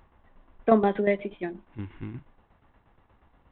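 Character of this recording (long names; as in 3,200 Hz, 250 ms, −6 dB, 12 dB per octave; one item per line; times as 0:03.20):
tremolo saw down 8.4 Hz, depth 65%
G.726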